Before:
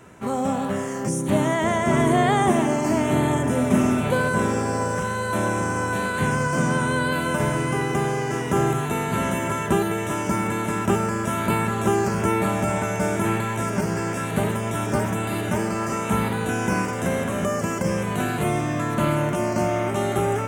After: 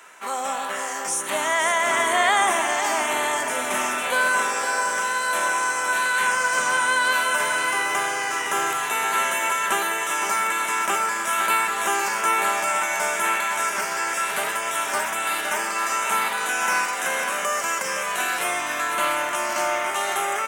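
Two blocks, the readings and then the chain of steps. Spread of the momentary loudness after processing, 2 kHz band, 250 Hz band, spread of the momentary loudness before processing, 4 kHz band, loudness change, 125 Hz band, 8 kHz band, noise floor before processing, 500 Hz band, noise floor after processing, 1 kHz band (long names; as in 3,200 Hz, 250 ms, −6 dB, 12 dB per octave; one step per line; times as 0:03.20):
4 LU, +7.0 dB, −16.5 dB, 5 LU, +7.5 dB, +1.0 dB, below −25 dB, +7.5 dB, −27 dBFS, −5.5 dB, −28 dBFS, +3.5 dB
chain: high-pass filter 1,100 Hz 12 dB per octave
single-tap delay 512 ms −8 dB
level +7 dB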